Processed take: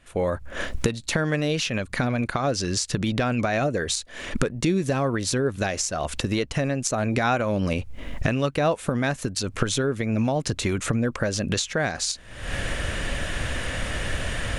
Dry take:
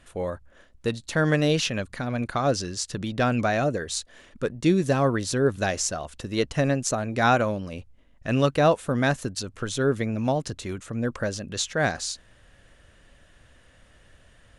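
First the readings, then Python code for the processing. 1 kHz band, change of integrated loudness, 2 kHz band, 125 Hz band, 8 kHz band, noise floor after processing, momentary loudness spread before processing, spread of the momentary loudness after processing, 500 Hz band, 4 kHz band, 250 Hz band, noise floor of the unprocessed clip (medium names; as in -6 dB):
-1.0 dB, 0.0 dB, +1.5 dB, +1.5 dB, +3.0 dB, -43 dBFS, 11 LU, 6 LU, -0.5 dB, +3.0 dB, +1.0 dB, -57 dBFS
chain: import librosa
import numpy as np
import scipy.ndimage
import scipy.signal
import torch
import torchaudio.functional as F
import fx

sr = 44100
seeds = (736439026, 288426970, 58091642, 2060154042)

y = fx.recorder_agc(x, sr, target_db=-13.0, rise_db_per_s=63.0, max_gain_db=30)
y = fx.peak_eq(y, sr, hz=2300.0, db=4.0, octaves=0.37)
y = y * librosa.db_to_amplitude(-3.0)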